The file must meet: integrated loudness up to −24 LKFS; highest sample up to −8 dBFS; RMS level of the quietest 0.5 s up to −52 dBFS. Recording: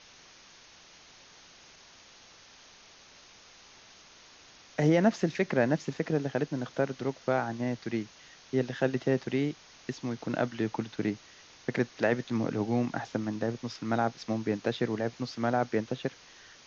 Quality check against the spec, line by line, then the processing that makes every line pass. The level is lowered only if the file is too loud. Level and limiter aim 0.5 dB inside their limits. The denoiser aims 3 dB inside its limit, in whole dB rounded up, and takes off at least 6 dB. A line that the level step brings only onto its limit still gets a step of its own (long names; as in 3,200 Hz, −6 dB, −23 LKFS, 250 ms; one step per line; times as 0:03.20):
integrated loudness −31.0 LKFS: in spec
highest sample −12.5 dBFS: in spec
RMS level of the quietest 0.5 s −55 dBFS: in spec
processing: no processing needed